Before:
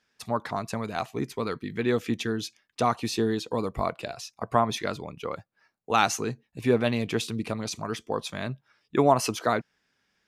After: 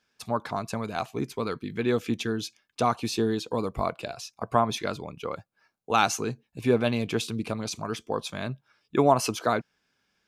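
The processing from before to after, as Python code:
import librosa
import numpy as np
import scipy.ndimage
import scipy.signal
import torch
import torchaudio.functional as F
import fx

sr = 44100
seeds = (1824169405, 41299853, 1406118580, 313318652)

y = fx.notch(x, sr, hz=1900.0, q=8.8)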